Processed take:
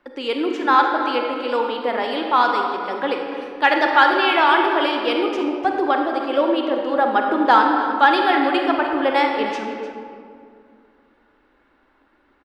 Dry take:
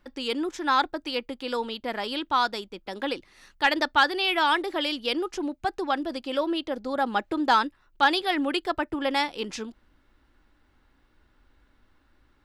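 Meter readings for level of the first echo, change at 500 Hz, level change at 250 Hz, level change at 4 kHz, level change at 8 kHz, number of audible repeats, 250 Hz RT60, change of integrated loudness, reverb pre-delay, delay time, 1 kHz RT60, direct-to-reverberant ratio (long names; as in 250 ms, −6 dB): −14.0 dB, +9.5 dB, +7.5 dB, +2.0 dB, can't be measured, 1, 2.7 s, +8.0 dB, 30 ms, 301 ms, 2.3 s, 1.5 dB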